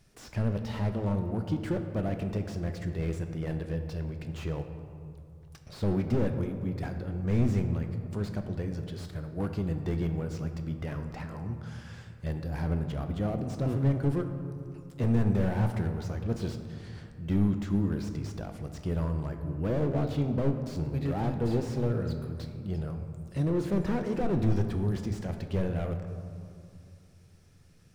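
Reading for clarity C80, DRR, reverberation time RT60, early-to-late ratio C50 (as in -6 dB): 8.5 dB, 6.0 dB, 2.4 s, 8.0 dB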